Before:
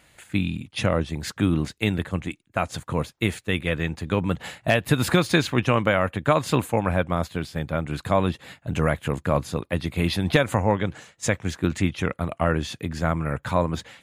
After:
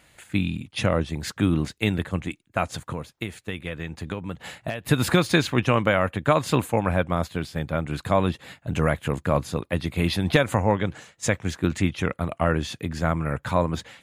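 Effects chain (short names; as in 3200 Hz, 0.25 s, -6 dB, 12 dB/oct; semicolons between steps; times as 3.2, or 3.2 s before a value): 2.71–4.85 compressor 5:1, threshold -28 dBFS, peak gain reduction 12.5 dB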